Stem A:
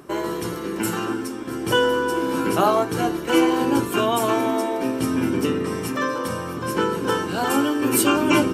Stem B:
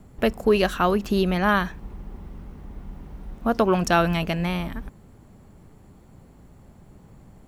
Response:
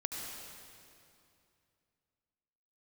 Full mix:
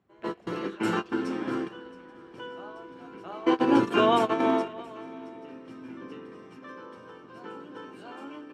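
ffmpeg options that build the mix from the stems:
-filter_complex "[0:a]dynaudnorm=f=220:g=7:m=5dB,volume=-3.5dB,asplit=2[a][b];[b]volume=-21.5dB[c];[1:a]equalizer=f=350:t=o:w=2.4:g=-9.5,alimiter=limit=-20dB:level=0:latency=1:release=25,volume=-17.5dB,asplit=4[d][e][f][g];[e]volume=-9.5dB[h];[f]volume=-12dB[i];[g]apad=whole_len=376535[j];[a][j]sidechaingate=range=-28dB:threshold=-47dB:ratio=16:detection=peak[k];[2:a]atrim=start_sample=2205[l];[h][l]afir=irnorm=-1:irlink=0[m];[c][i]amix=inputs=2:normalize=0,aecho=0:1:673:1[n];[k][d][m][n]amix=inputs=4:normalize=0,highpass=160,lowpass=3.5k"

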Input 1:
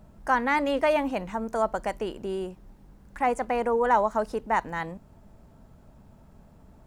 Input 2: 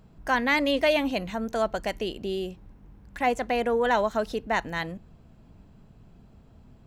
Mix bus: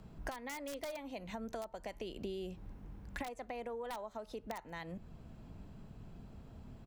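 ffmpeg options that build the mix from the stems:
-filter_complex "[0:a]flanger=delay=4.5:depth=8.3:regen=88:speed=0.34:shape=sinusoidal,volume=-16dB,asplit=2[a][b];[1:a]aeval=exprs='(mod(5.01*val(0)+1,2)-1)/5.01':c=same,acompressor=threshold=-33dB:ratio=3,volume=-1,adelay=0.4,volume=0.5dB[c];[b]apad=whole_len=302660[d];[c][d]sidechaincompress=threshold=-49dB:ratio=8:attack=16:release=780[e];[a][e]amix=inputs=2:normalize=0,acrossover=split=170[f][g];[g]acompressor=threshold=-44dB:ratio=2[h];[f][h]amix=inputs=2:normalize=0"

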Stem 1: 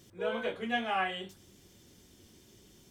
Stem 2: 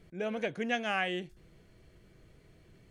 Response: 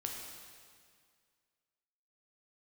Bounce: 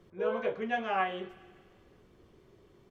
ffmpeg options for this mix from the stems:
-filter_complex "[0:a]firequalizer=gain_entry='entry(270,0);entry(410,9);entry(940,0);entry(5800,-15)':delay=0.05:min_phase=1,volume=-5dB[a];[1:a]lowpass=f=5.3k:w=0.5412,lowpass=f=5.3k:w=1.3066,volume=-1,volume=-10dB,asplit=2[b][c];[c]volume=-7.5dB[d];[2:a]atrim=start_sample=2205[e];[d][e]afir=irnorm=-1:irlink=0[f];[a][b][f]amix=inputs=3:normalize=0,equalizer=f=1.1k:t=o:w=0.57:g=9.5"

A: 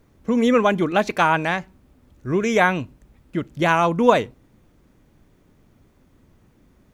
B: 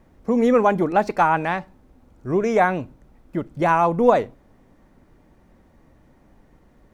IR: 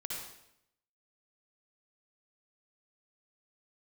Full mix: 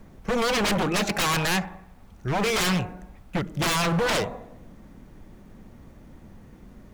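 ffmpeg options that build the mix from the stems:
-filter_complex "[0:a]lowshelf=f=65:g=8.5,volume=3dB[a];[1:a]equalizer=f=200:t=o:w=0.44:g=9.5,volume=-1,volume=0.5dB,asplit=2[b][c];[c]volume=-16dB[d];[2:a]atrim=start_sample=2205[e];[d][e]afir=irnorm=-1:irlink=0[f];[a][b][f]amix=inputs=3:normalize=0,aeval=exprs='0.119*(abs(mod(val(0)/0.119+3,4)-2)-1)':c=same"

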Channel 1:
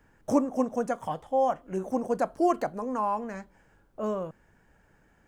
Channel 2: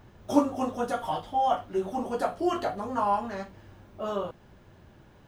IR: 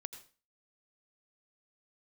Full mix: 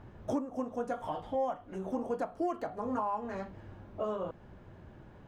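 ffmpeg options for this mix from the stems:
-filter_complex "[0:a]highshelf=f=5k:g=-7,acontrast=84,volume=-13dB,asplit=2[a][b];[1:a]acompressor=threshold=-30dB:ratio=6,lowpass=f=1.4k:p=1,volume=2dB[c];[b]apad=whole_len=232677[d];[c][d]sidechaincompress=threshold=-34dB:ratio=8:attack=28:release=886[e];[a][e]amix=inputs=2:normalize=0,alimiter=limit=-24dB:level=0:latency=1:release=292"

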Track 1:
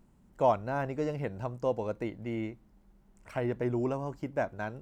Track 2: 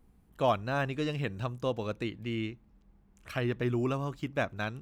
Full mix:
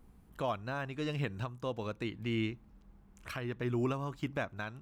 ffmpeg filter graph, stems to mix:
-filter_complex "[0:a]acompressor=threshold=-37dB:ratio=6,bandpass=f=1.2k:t=q:w=2:csg=0,volume=-2.5dB,asplit=2[a][b];[1:a]volume=3dB[c];[b]apad=whole_len=212232[d];[c][d]sidechaincompress=threshold=-53dB:ratio=8:attack=6.5:release=688[e];[a][e]amix=inputs=2:normalize=0"

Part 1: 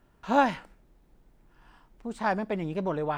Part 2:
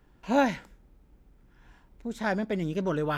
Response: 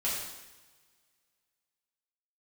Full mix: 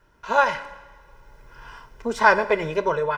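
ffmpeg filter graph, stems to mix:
-filter_complex "[0:a]equalizer=f=1.6k:t=o:w=1.9:g=8.5,aecho=1:1:2:0.96,volume=-4.5dB,asplit=3[a][b][c];[b]volume=-16.5dB[d];[1:a]highpass=130,adelay=4.1,volume=-3.5dB[e];[c]apad=whole_len=140274[f];[e][f]sidechaincompress=threshold=-30dB:ratio=8:attack=16:release=1190[g];[2:a]atrim=start_sample=2205[h];[d][h]afir=irnorm=-1:irlink=0[i];[a][g][i]amix=inputs=3:normalize=0,dynaudnorm=f=300:g=5:m=13dB,equalizer=f=5.6k:w=4.1:g=9"

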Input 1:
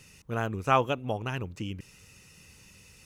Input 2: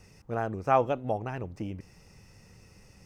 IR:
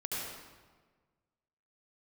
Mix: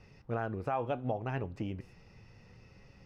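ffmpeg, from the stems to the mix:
-filter_complex "[0:a]agate=range=-15dB:threshold=-50dB:ratio=16:detection=peak,volume=-17.5dB,asplit=2[a][b];[b]volume=-24dB[c];[1:a]lowpass=f=4.5k:w=0.5412,lowpass=f=4.5k:w=1.3066,flanger=delay=7.1:depth=1.7:regen=75:speed=0.69:shape=triangular,volume=3dB,asplit=2[d][e];[e]apad=whole_len=134627[f];[a][f]sidechaincompress=threshold=-39dB:ratio=8:attack=16:release=115[g];[2:a]atrim=start_sample=2205[h];[c][h]afir=irnorm=-1:irlink=0[i];[g][d][i]amix=inputs=3:normalize=0,alimiter=limit=-23dB:level=0:latency=1:release=220"

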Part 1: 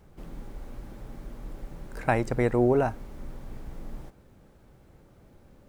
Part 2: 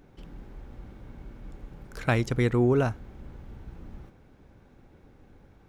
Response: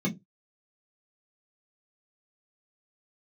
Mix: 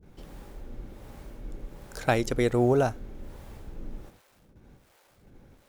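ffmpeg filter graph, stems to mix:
-filter_complex "[0:a]acrusher=bits=9:mix=0:aa=0.000001,acrossover=split=500[a][b];[a]aeval=exprs='val(0)*(1-1/2+1/2*cos(2*PI*1.3*n/s))':c=same[c];[b]aeval=exprs='val(0)*(1-1/2-1/2*cos(2*PI*1.3*n/s))':c=same[d];[c][d]amix=inputs=2:normalize=0,volume=0.5dB,asplit=2[e][f];[1:a]aemphasis=mode=production:type=cd,volume=-1,volume=-1dB[g];[f]apad=whole_len=250750[h];[g][h]sidechaingate=range=-33dB:threshold=-56dB:ratio=16:detection=peak[i];[e][i]amix=inputs=2:normalize=0"

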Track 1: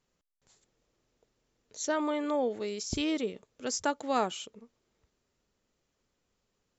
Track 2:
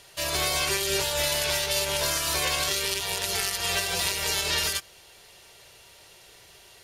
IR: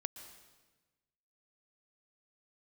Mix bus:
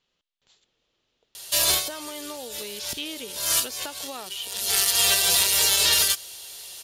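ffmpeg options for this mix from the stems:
-filter_complex "[0:a]acompressor=threshold=-34dB:ratio=10,lowpass=f=3k:t=q:w=1.7,volume=1dB,asplit=2[a][b];[1:a]acrossover=split=2700[c][d];[d]acompressor=threshold=-27dB:ratio=4:attack=1:release=60[e];[c][e]amix=inputs=2:normalize=0,adelay=1350,volume=2.5dB[f];[b]apad=whole_len=365508[g];[f][g]sidechaincompress=threshold=-56dB:ratio=20:attack=37:release=176[h];[a][h]amix=inputs=2:normalize=0,lowshelf=f=330:g=-6,aexciter=amount=1.9:drive=8.8:freq=3.1k"

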